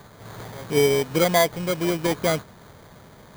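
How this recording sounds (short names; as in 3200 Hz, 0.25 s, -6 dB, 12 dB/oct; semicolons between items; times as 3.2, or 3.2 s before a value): aliases and images of a low sample rate 2700 Hz, jitter 0%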